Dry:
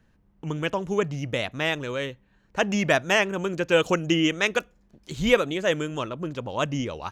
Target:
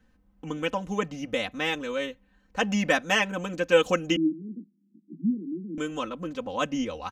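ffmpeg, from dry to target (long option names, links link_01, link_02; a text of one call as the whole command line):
ffmpeg -i in.wav -filter_complex "[0:a]asettb=1/sr,asplit=3[link_01][link_02][link_03];[link_01]atrim=end=4.164[link_04];[link_02]atrim=start=4.16:end=5.78,asetpts=PTS-STARTPTS,afade=type=in:duration=0.004:curve=qsin,afade=type=out:start_time=1.616:duration=0.004:curve=qsin,asuperpass=centerf=250:order=20:qfactor=1.1[link_05];[link_03]atrim=start=5.776[link_06];[link_04][link_05]acrossfade=duration=0.004:curve1=hsin:curve2=qsin[link_07];[link_07][link_06]acrossfade=duration=0.004:curve1=qsin:curve2=hsin,aecho=1:1:3.9:0.9,volume=-4dB" out.wav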